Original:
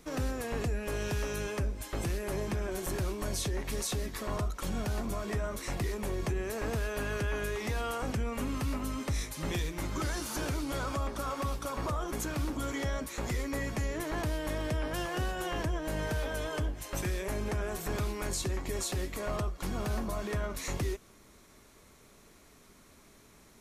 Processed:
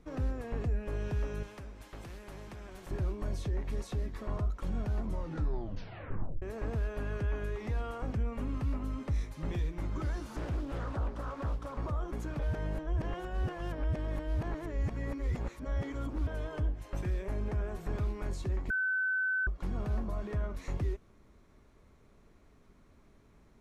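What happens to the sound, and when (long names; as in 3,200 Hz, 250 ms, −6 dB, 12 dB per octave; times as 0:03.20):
0:01.43–0:02.91: every bin compressed towards the loudest bin 2 to 1
0:05.01: tape stop 1.41 s
0:10.35–0:11.78: highs frequency-modulated by the lows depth 0.66 ms
0:12.39–0:16.27: reverse
0:18.70–0:19.47: beep over 1,520 Hz −20 dBFS
whole clip: low-pass filter 1,500 Hz 6 dB per octave; low-shelf EQ 130 Hz +8.5 dB; level −5 dB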